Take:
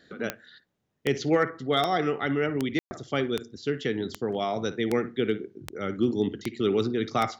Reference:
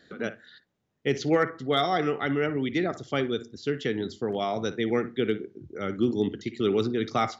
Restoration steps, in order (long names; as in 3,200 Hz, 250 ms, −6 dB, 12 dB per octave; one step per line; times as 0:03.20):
click removal
ambience match 0:02.79–0:02.91